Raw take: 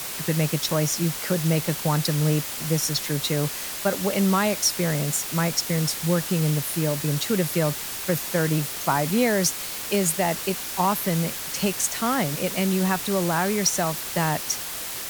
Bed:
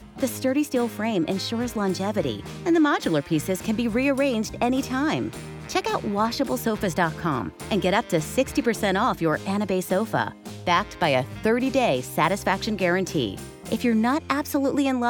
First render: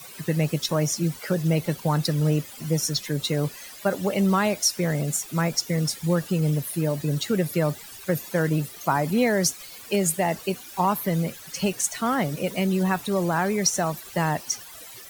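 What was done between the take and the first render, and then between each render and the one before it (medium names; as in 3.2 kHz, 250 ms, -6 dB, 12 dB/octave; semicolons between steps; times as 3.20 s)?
noise reduction 15 dB, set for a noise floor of -33 dBFS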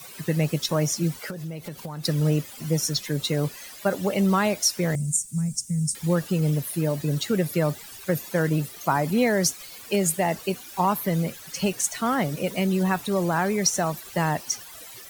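1.30–2.04 s: compression, threshold -31 dBFS; 4.95–5.95 s: FFT filter 200 Hz 0 dB, 330 Hz -23 dB, 1 kHz -28 dB, 1.7 kHz -25 dB, 3.7 kHz -21 dB, 8.6 kHz +8 dB, 13 kHz -13 dB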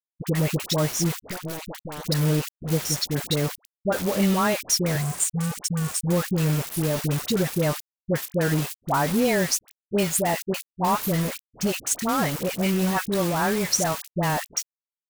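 bit crusher 5-bit; phase dispersion highs, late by 73 ms, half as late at 870 Hz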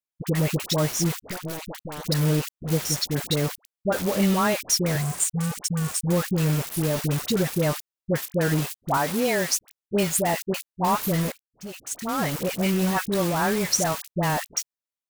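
8.97–9.57 s: bass shelf 170 Hz -11.5 dB; 11.32–12.34 s: fade in quadratic, from -18.5 dB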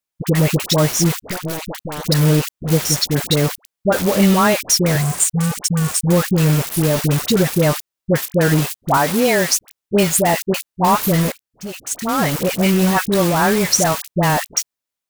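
trim +8 dB; peak limiter -3 dBFS, peak gain reduction 2 dB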